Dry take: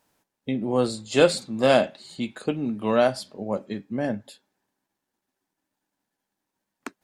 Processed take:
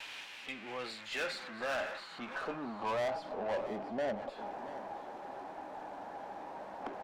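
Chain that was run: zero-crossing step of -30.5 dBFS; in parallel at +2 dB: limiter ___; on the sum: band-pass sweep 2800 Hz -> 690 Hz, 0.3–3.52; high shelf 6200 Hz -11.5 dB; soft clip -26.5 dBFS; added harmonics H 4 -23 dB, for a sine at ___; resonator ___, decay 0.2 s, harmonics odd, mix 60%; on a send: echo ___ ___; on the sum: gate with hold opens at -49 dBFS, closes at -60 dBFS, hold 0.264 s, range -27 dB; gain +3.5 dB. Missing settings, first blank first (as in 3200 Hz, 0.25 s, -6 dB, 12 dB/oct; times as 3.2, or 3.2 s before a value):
-16 dBFS, -26.5 dBFS, 810 Hz, 0.678 s, -13.5 dB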